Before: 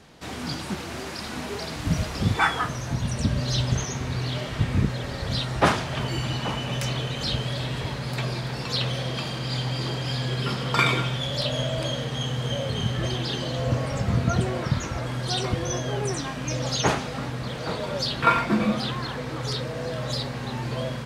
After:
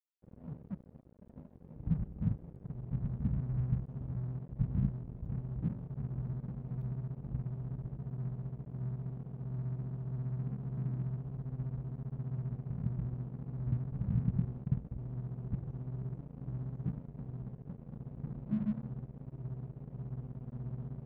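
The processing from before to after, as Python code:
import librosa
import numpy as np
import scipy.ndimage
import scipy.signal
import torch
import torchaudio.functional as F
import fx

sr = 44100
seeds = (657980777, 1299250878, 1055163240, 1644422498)

y = scipy.signal.sosfilt(scipy.signal.cheby2(4, 70, [770.0, 5000.0], 'bandstop', fs=sr, output='sos'), x)
y = fx.peak_eq(y, sr, hz=88.0, db=-9.5, octaves=0.62)
y = np.sign(y) * np.maximum(np.abs(y) - 10.0 ** (-44.0 / 20.0), 0.0)
y = fx.air_absorb(y, sr, metres=230.0)
y = F.gain(torch.from_numpy(y), -3.5).numpy()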